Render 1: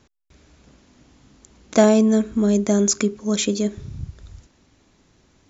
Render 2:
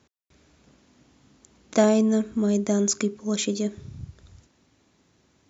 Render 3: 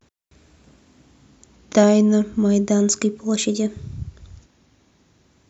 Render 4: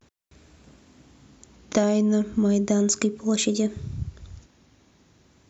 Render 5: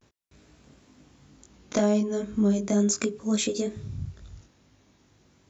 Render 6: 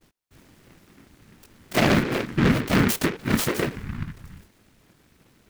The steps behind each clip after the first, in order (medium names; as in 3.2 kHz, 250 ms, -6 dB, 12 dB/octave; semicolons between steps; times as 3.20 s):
high-pass 80 Hz; trim -4.5 dB
bass shelf 97 Hz +7 dB; vibrato 0.37 Hz 54 cents; trim +4 dB
compression 5:1, threshold -18 dBFS, peak gain reduction 8.5 dB
chorus 2.1 Hz, delay 19 ms, depth 2.6 ms
whisper effect; delay time shaken by noise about 1.5 kHz, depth 0.22 ms; trim +3 dB